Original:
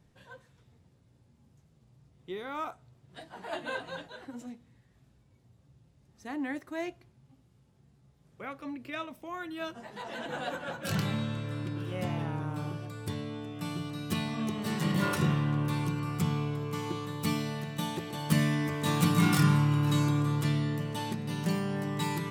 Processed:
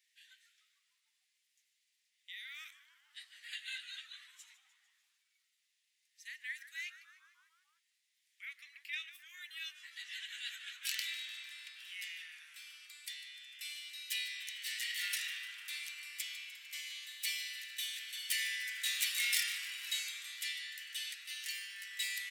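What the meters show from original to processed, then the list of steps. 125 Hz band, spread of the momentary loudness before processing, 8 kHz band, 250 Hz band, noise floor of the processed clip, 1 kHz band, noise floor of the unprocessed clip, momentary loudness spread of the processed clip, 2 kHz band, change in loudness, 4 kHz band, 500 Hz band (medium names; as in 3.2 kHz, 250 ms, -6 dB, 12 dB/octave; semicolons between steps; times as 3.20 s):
under -40 dB, 15 LU, +2.0 dB, under -40 dB, -81 dBFS, -28.5 dB, -65 dBFS, 16 LU, -1.0 dB, -8.0 dB, +2.5 dB, under -40 dB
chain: Chebyshev high-pass 1.9 kHz, order 5; on a send: frequency-shifting echo 150 ms, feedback 61%, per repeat -130 Hz, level -15.5 dB; on the sum: trim +2.5 dB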